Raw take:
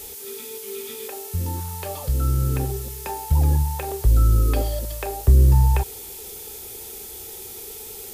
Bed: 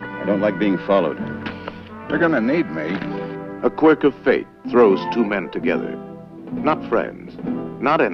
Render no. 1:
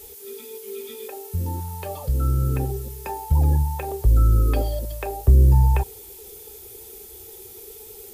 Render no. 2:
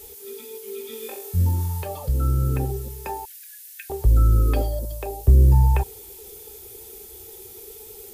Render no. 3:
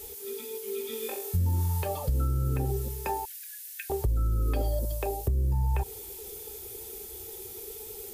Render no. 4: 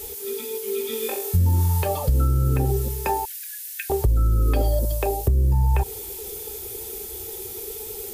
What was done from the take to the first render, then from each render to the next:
denoiser 8 dB, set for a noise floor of -37 dBFS
0.9–1.83 flutter echo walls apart 3.8 m, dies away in 0.41 s; 3.25–3.9 brick-wall FIR high-pass 1400 Hz; 4.65–5.27 bell 3300 Hz -> 1100 Hz -8.5 dB 1.5 oct
limiter -15 dBFS, peak gain reduction 10 dB; compressor, threshold -23 dBFS, peak gain reduction 5.5 dB
gain +7.5 dB

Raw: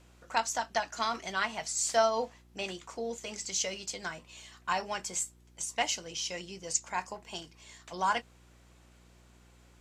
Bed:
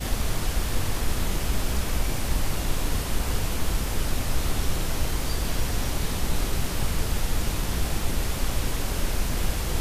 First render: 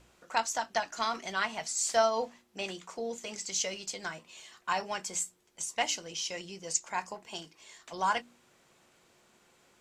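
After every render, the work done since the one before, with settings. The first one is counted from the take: de-hum 60 Hz, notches 5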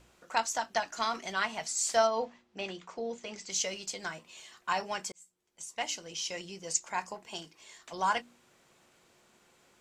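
2.07–3.5 air absorption 110 m; 5.12–6.3 fade in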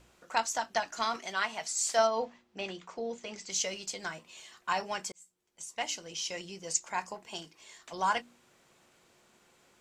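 1.16–1.99 low shelf 190 Hz -11.5 dB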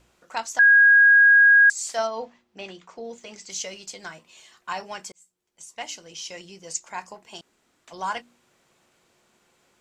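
0.59–1.7 bleep 1640 Hz -10.5 dBFS; 3.04–3.54 high shelf 9700 Hz +11.5 dB; 7.41–7.85 room tone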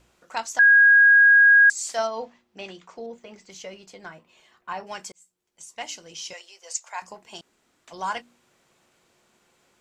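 1.47–1.94 low shelf 320 Hz +5 dB; 3.06–4.87 bell 7300 Hz -14 dB 2.4 oct; 6.33–7.02 HPF 570 Hz 24 dB/oct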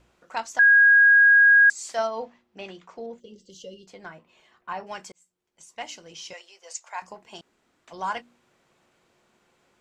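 3.2–3.87 spectral gain 580–2700 Hz -24 dB; high shelf 4500 Hz -8.5 dB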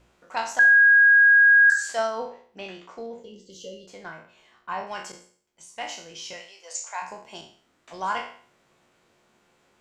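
spectral trails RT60 0.50 s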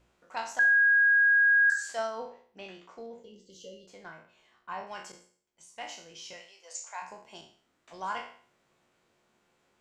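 gain -7 dB

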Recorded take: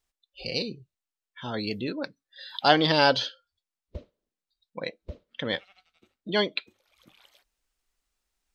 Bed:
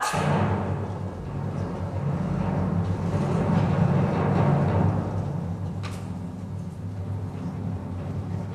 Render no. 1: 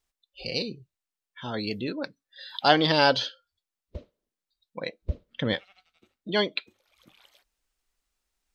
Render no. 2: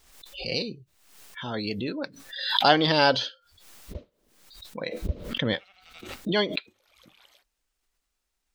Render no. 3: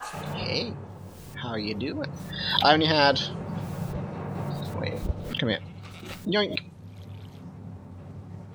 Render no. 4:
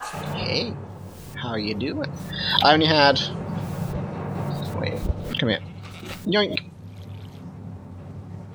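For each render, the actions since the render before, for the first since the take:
5.02–5.54 low shelf 220 Hz +12 dB
backwards sustainer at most 63 dB/s
add bed -11 dB
gain +4 dB; limiter -1 dBFS, peak gain reduction 2 dB

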